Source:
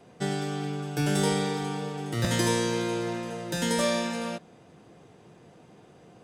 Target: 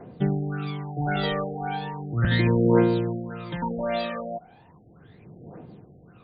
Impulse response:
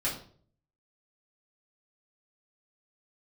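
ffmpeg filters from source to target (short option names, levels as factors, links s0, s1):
-af "aphaser=in_gain=1:out_gain=1:delay=1.7:decay=0.76:speed=0.36:type=triangular,afftfilt=real='re*lt(b*sr/1024,760*pow(4800/760,0.5+0.5*sin(2*PI*1.8*pts/sr)))':imag='im*lt(b*sr/1024,760*pow(4800/760,0.5+0.5*sin(2*PI*1.8*pts/sr)))':win_size=1024:overlap=0.75"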